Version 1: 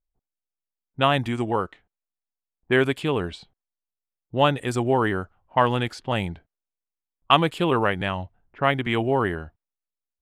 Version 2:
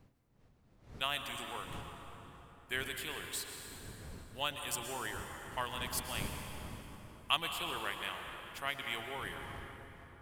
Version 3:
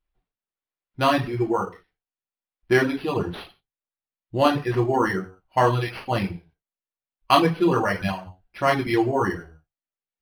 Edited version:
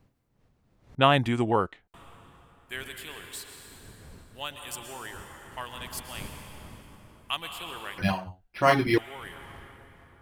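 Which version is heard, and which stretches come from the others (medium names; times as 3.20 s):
2
0.95–1.94 s: from 1
7.98–8.98 s: from 3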